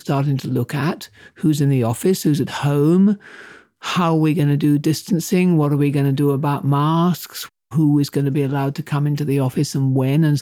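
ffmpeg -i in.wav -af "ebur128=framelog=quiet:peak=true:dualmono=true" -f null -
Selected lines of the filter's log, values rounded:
Integrated loudness:
  I:         -15.3 LUFS
  Threshold: -25.7 LUFS
Loudness range:
  LRA:         1.8 LU
  Threshold: -35.4 LUFS
  LRA low:   -16.3 LUFS
  LRA high:  -14.6 LUFS
True peak:
  Peak:       -6.8 dBFS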